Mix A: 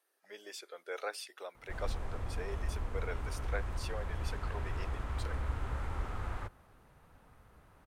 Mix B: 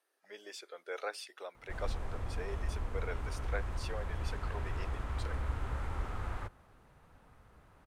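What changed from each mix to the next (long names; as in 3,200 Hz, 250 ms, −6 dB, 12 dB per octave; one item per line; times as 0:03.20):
speech: add high-shelf EQ 12,000 Hz −10.5 dB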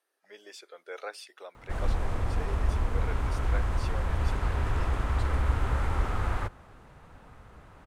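background +9.5 dB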